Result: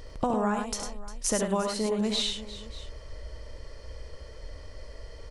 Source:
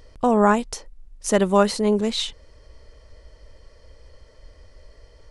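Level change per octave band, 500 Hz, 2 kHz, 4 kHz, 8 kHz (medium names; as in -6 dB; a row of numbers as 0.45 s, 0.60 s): -9.5 dB, -9.0 dB, -2.0 dB, -0.5 dB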